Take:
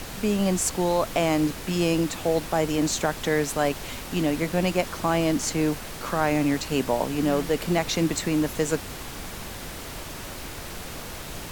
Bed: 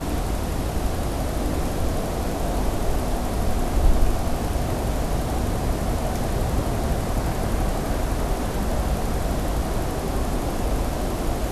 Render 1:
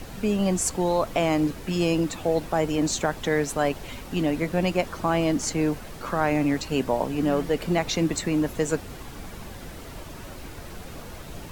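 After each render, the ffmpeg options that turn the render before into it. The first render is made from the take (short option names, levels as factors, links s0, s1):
-af "afftdn=nr=8:nf=-37"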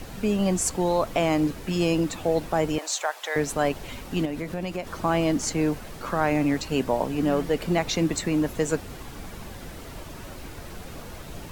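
-filter_complex "[0:a]asettb=1/sr,asplit=3[s0][s1][s2];[s0]atrim=end=2.784[s3];[s1]atrim=start=2.78:end=3.36,asetpts=PTS-STARTPTS,afade=t=in:d=0.004:c=qsin,afade=t=out:st=0.576:d=0.004:c=qsin,highpass=f=610:w=0.5412,highpass=f=610:w=1.3066[s4];[s2]atrim=start=3.356[s5];[s3][s4]acrossfade=d=0.004:c1=hsin:c2=qsin[s6];[s6][s5]acrossfade=d=0.004:c1=qsin:c2=hsin,asettb=1/sr,asplit=3[s7][s8][s9];[s7]atrim=end=4.254[s10];[s8]atrim=start=4.25:end=4.87,asetpts=PTS-STARTPTS,afade=t=in:d=0.004:c=qsin,afade=t=out:st=0.616:d=0.004:c=qsin,acompressor=threshold=0.0398:ratio=3:attack=3.2:release=140:knee=1:detection=peak[s11];[s9]atrim=start=4.866[s12];[s10][s11]acrossfade=d=0.004:c1=hsin:c2=qsin[s13];[s13][s12]acrossfade=d=0.004:c1=qsin:c2=hsin"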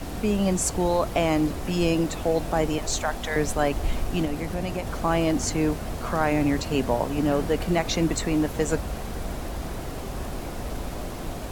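-filter_complex "[1:a]volume=0.355[s0];[0:a][s0]amix=inputs=2:normalize=0"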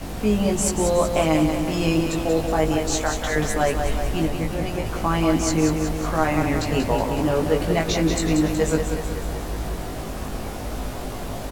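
-filter_complex "[0:a]asplit=2[s0][s1];[s1]adelay=19,volume=0.708[s2];[s0][s2]amix=inputs=2:normalize=0,aecho=1:1:185|370|555|740|925|1110|1295|1480:0.473|0.274|0.159|0.0923|0.0535|0.0311|0.018|0.0104"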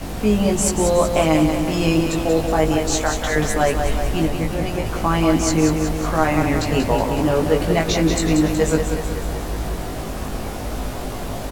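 -af "volume=1.41"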